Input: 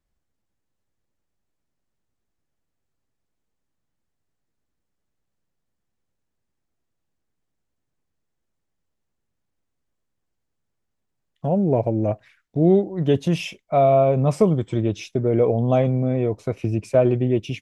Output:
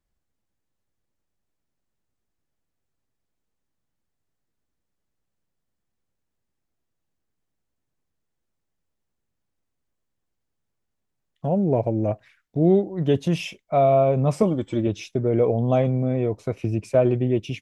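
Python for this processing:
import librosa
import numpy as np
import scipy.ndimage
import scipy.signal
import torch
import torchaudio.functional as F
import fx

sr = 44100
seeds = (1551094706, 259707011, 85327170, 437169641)

y = fx.comb(x, sr, ms=3.5, depth=0.56, at=(14.42, 14.87))
y = F.gain(torch.from_numpy(y), -1.5).numpy()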